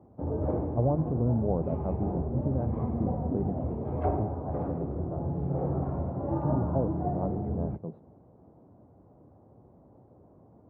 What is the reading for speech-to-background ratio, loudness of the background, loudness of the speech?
-1.0 dB, -32.5 LUFS, -33.5 LUFS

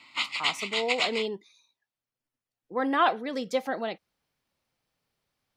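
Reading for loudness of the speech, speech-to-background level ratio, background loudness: -30.0 LUFS, -1.5 dB, -28.5 LUFS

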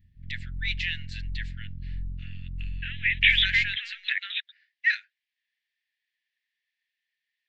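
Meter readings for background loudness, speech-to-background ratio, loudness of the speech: -39.5 LUFS, 14.5 dB, -25.0 LUFS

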